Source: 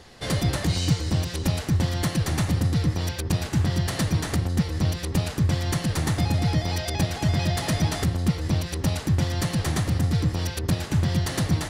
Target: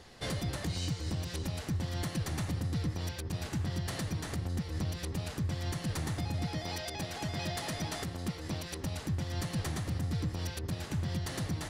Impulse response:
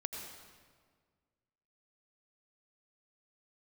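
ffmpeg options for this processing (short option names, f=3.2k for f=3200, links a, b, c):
-filter_complex "[0:a]asettb=1/sr,asplit=3[a][b][c];[a]atrim=end=6.464[d];[b]atrim=start=6.46:end=8.83,asetpts=PTS-STARTPTS,afade=t=in:d=0.004:c=qsin,afade=t=out:st=2.366:d=0.004:c=qsin,equalizer=f=66:t=o:w=2.9:g=-8.5[e];[c]atrim=start=8.826[f];[d][e]acrossfade=d=0.004:c1=hsin:c2=qsin[g];[g][f]acrossfade=d=0.004:c1=qsin:c2=hsin,alimiter=limit=-20dB:level=0:latency=1:release=239,volume=-5.5dB"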